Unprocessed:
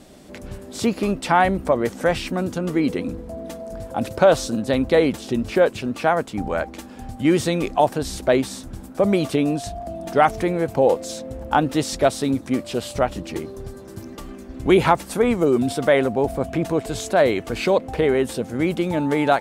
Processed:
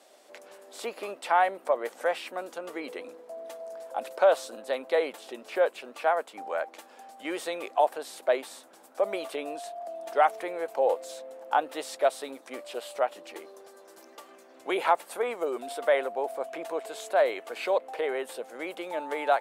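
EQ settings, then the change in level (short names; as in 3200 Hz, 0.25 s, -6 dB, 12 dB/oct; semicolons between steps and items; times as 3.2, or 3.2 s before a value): dynamic EQ 5800 Hz, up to -7 dB, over -47 dBFS, Q 1.5; ladder high-pass 440 Hz, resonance 25%; -1.5 dB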